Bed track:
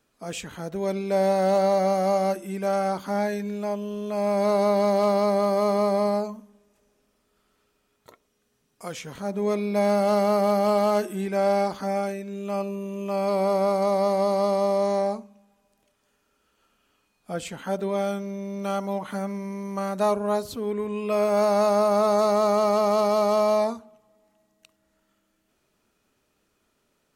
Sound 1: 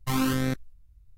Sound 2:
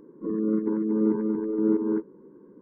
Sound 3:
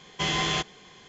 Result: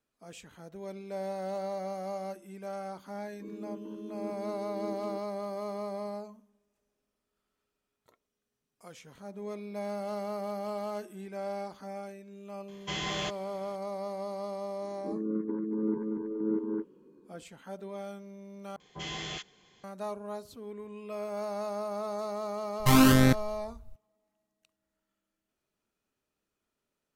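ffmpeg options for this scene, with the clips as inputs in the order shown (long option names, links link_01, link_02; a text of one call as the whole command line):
ffmpeg -i bed.wav -i cue0.wav -i cue1.wav -i cue2.wav -filter_complex "[2:a]asplit=2[link_01][link_02];[3:a]asplit=2[link_03][link_04];[0:a]volume=-14.5dB[link_05];[link_04]acrossover=split=1200[link_06][link_07];[link_07]adelay=40[link_08];[link_06][link_08]amix=inputs=2:normalize=0[link_09];[1:a]acontrast=70[link_10];[link_05]asplit=2[link_11][link_12];[link_11]atrim=end=18.764[link_13];[link_09]atrim=end=1.08,asetpts=PTS-STARTPTS,volume=-11dB[link_14];[link_12]atrim=start=19.836[link_15];[link_01]atrim=end=2.61,asetpts=PTS-STARTPTS,volume=-17.5dB,afade=type=in:duration=0.004:curve=hsin,afade=type=out:start_time=2.606:duration=0.004:curve=hsin,adelay=3180[link_16];[link_03]atrim=end=1.08,asetpts=PTS-STARTPTS,volume=-8dB,afade=type=in:duration=0.004:curve=hsin,afade=type=out:start_time=1.076:duration=0.004:curve=hsin,adelay=559188S[link_17];[link_02]atrim=end=2.61,asetpts=PTS-STARTPTS,volume=-7.5dB,afade=type=in:duration=0.004:curve=hsin,afade=type=out:start_time=2.606:duration=0.004:curve=hsin,adelay=14820[link_18];[link_10]atrim=end=1.17,asetpts=PTS-STARTPTS,volume=-1dB,afade=type=in:duration=0.004:curve=hsin,afade=type=out:start_time=1.166:duration=0.004:curve=hsin,adelay=22790[link_19];[link_13][link_14]acrossfade=duration=0.004:curve1=hsin:curve2=hsin[link_20];[link_20][link_15]acrossfade=duration=0.004:curve1=hsin:curve2=hsin[link_21];[link_21][link_16][link_17][link_18][link_19]amix=inputs=5:normalize=0" out.wav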